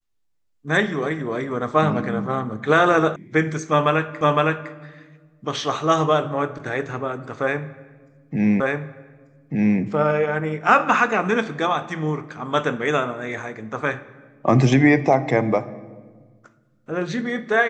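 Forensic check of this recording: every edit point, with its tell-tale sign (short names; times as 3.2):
3.16 sound cut off
4.21 repeat of the last 0.51 s
8.6 repeat of the last 1.19 s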